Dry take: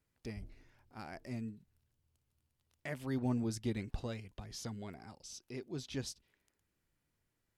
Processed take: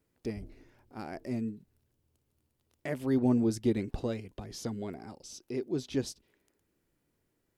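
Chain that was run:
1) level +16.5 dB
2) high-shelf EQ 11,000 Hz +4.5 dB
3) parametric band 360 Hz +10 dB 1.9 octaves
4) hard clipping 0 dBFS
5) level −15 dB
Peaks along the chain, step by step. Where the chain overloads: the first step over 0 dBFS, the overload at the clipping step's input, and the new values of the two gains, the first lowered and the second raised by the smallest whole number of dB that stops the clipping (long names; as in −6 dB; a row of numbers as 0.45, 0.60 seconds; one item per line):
−6.0, −6.0, −1.5, −1.5, −16.5 dBFS
no step passes full scale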